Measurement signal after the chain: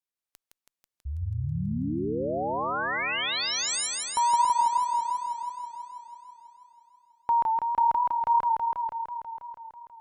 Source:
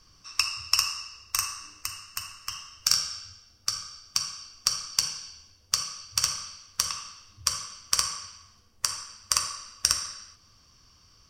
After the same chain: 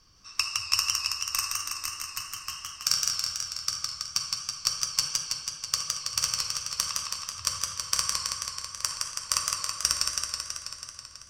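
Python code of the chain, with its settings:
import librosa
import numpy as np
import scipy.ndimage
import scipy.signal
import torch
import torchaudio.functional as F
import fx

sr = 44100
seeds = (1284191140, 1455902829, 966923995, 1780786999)

y = fx.cheby_harmonics(x, sr, harmonics=(2,), levels_db=(-44,), full_scale_db=-1.5)
y = fx.echo_warbled(y, sr, ms=163, feedback_pct=74, rate_hz=2.8, cents=80, wet_db=-3.0)
y = y * librosa.db_to_amplitude(-2.5)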